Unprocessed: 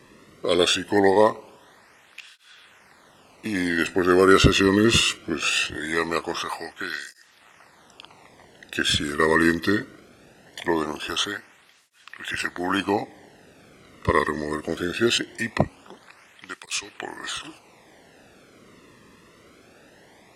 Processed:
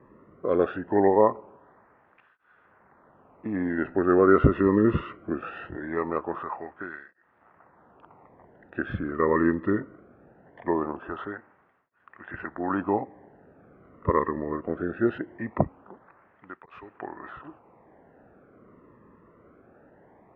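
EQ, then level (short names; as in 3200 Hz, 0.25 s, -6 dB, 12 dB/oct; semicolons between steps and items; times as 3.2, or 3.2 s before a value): LPF 1400 Hz 24 dB/oct; -2.0 dB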